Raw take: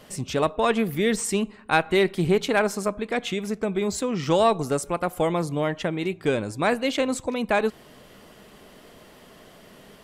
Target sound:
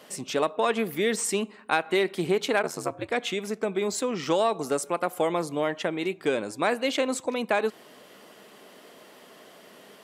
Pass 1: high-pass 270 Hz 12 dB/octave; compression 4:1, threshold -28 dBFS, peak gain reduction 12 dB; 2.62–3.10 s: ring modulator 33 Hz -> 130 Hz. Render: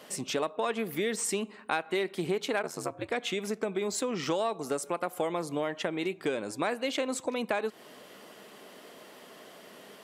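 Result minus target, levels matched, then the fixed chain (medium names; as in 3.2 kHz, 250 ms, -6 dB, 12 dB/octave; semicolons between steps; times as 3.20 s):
compression: peak gain reduction +6.5 dB
high-pass 270 Hz 12 dB/octave; compression 4:1, threshold -19.5 dBFS, peak gain reduction 5.5 dB; 2.62–3.10 s: ring modulator 33 Hz -> 130 Hz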